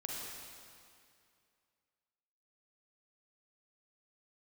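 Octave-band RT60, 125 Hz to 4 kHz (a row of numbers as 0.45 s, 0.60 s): 2.4 s, 2.4 s, 2.4 s, 2.4 s, 2.3 s, 2.1 s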